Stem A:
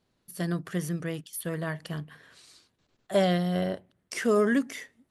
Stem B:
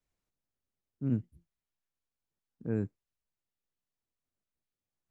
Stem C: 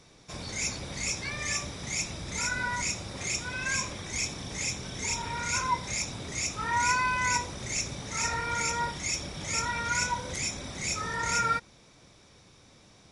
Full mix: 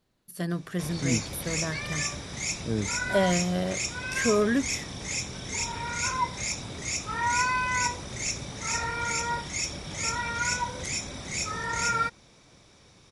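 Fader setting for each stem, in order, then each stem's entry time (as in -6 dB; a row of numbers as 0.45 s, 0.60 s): -0.5 dB, +2.5 dB, +0.5 dB; 0.00 s, 0.00 s, 0.50 s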